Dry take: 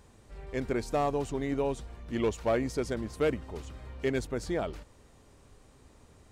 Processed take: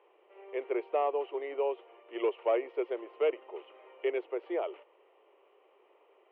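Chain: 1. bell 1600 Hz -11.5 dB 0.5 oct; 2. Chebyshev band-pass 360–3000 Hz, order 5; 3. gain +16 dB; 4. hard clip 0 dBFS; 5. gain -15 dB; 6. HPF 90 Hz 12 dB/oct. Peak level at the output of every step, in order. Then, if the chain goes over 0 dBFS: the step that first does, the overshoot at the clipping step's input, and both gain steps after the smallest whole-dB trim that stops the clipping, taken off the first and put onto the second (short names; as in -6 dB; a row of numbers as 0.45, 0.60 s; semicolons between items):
-19.0, -19.0, -3.0, -3.0, -18.0, -18.5 dBFS; no overload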